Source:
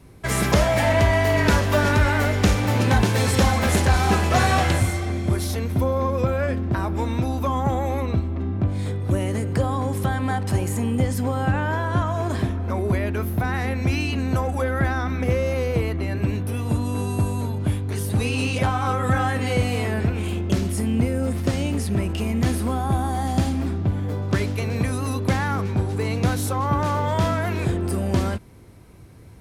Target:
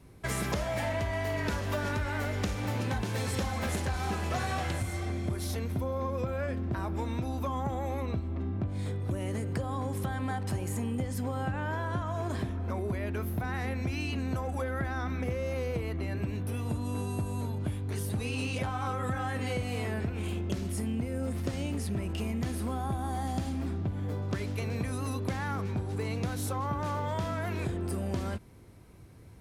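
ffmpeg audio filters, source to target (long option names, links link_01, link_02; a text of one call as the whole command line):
ffmpeg -i in.wav -af "acompressor=threshold=-22dB:ratio=6,volume=-6.5dB" out.wav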